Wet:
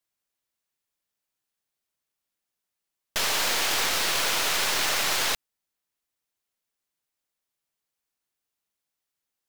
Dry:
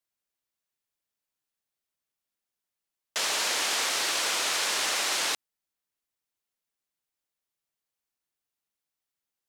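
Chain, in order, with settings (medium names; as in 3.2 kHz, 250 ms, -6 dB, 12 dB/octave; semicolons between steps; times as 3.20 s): tracing distortion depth 0.074 ms; trim +2.5 dB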